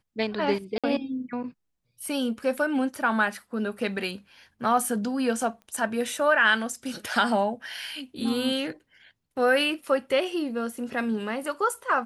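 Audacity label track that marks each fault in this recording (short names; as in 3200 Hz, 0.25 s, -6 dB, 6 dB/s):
0.780000	0.840000	gap 56 ms
5.620000	5.620000	pop -35 dBFS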